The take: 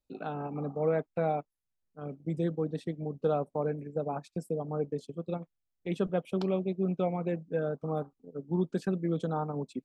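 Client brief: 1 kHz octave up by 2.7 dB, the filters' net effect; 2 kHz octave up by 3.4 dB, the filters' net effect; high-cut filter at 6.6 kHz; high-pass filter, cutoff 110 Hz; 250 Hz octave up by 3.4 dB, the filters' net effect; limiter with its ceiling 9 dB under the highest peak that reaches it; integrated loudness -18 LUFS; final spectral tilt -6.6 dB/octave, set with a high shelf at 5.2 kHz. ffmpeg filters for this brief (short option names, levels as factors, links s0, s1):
-af "highpass=110,lowpass=6600,equalizer=f=250:t=o:g=6,equalizer=f=1000:t=o:g=3,equalizer=f=2000:t=o:g=4,highshelf=f=5200:g=-5,volume=6.31,alimiter=limit=0.447:level=0:latency=1"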